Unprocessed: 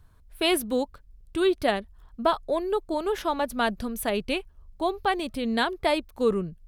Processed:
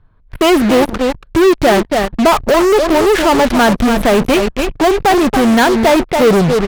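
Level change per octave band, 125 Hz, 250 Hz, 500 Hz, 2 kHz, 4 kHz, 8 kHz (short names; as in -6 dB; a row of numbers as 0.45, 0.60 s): +20.0, +17.5, +15.5, +15.0, +12.0, +15.5 dB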